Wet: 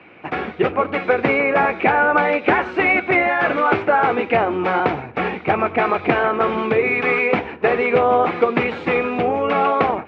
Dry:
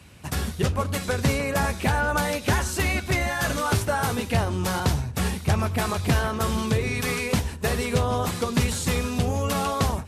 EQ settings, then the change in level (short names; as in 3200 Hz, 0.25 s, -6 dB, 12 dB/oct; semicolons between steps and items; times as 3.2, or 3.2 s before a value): speaker cabinet 260–2600 Hz, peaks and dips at 330 Hz +9 dB, 470 Hz +6 dB, 750 Hz +8 dB, 1300 Hz +5 dB, 2300 Hz +9 dB; +5.0 dB